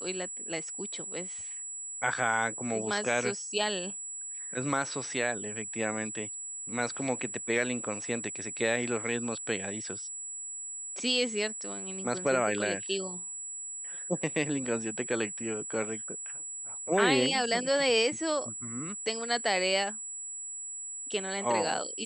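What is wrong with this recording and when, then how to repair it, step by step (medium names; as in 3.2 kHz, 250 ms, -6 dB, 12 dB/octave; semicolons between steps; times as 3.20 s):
whine 7.8 kHz -37 dBFS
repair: band-stop 7.8 kHz, Q 30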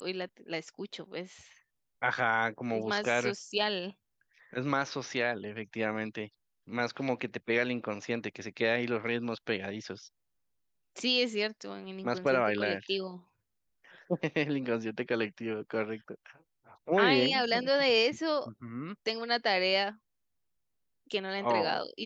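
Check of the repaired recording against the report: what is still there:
nothing left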